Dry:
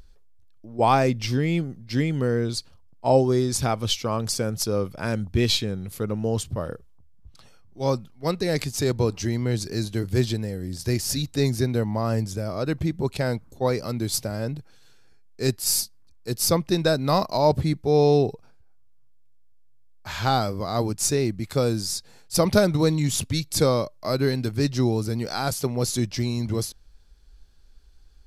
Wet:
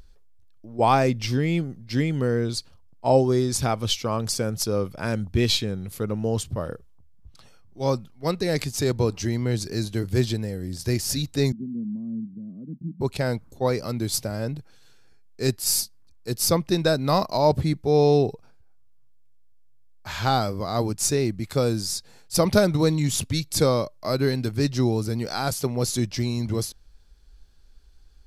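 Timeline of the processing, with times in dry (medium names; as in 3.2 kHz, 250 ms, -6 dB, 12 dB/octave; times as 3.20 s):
11.52–13.01 s: Butterworth band-pass 210 Hz, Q 2.6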